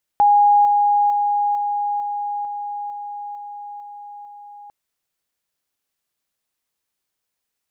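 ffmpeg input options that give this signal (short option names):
-f lavfi -i "aevalsrc='pow(10,(-10-3*floor(t/0.45))/20)*sin(2*PI*822*t)':d=4.5:s=44100"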